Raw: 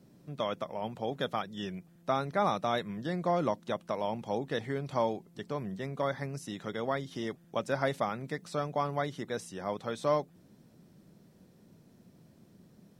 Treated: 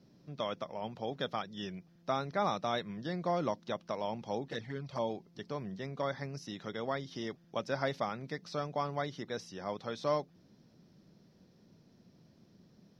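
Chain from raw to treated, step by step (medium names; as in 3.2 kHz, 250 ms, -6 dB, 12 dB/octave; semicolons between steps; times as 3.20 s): resonant high shelf 6.7 kHz -8.5 dB, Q 3; 4.48–5.10 s: touch-sensitive flanger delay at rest 6.7 ms, full sweep at -26.5 dBFS; trim -3.5 dB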